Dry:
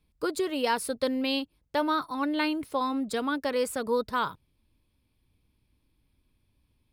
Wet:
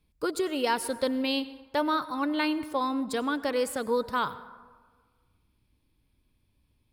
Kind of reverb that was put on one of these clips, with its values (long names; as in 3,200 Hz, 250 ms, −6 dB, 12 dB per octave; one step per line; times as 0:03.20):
dense smooth reverb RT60 1.5 s, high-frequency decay 0.45×, pre-delay 80 ms, DRR 15.5 dB